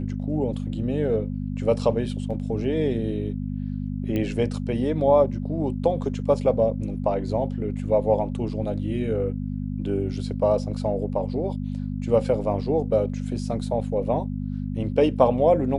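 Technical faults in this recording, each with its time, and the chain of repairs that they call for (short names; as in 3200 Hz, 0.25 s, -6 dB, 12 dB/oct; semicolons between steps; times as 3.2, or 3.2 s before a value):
hum 50 Hz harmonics 5 -29 dBFS
4.16 pop -16 dBFS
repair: de-click; de-hum 50 Hz, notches 5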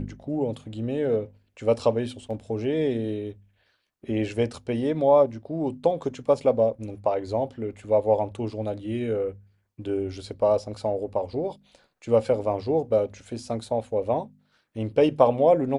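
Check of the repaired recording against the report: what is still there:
none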